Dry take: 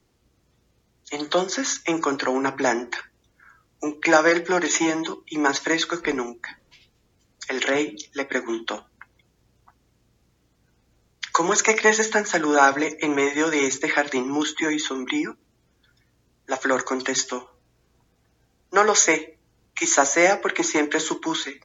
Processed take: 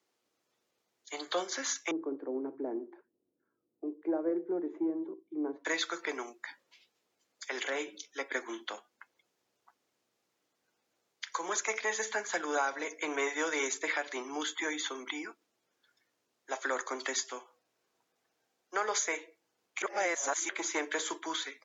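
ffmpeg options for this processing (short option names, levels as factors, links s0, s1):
-filter_complex "[0:a]asettb=1/sr,asplit=3[s0][s1][s2];[s0]atrim=end=1.914[s3];[s1]atrim=start=1.91:end=5.65,asetpts=PTS-STARTPTS,afade=t=in:d=0.004:c=qsin,afade=t=out:st=3.736:d=0.004:c=qsin,lowpass=f=330:t=q:w=2[s4];[s2]atrim=start=5.646[s5];[s3][s4]acrossfade=d=0.004:c1=hsin:c2=qsin[s6];[s6][s5]acrossfade=d=0.004:c1=qsin:c2=hsin,asplit=3[s7][s8][s9];[s7]atrim=end=19.822[s10];[s8]atrim=start=19.818:end=20.492,asetpts=PTS-STARTPTS,areverse[s11];[s9]atrim=start=20.488[s12];[s10][s11]acrossfade=d=0.004:c1=hsin:c2=hsin[s13];[s13][s12]acrossfade=d=0.004:c1=hsin:c2=hsin,highpass=440,alimiter=limit=0.251:level=0:latency=1:release=334,volume=0.376"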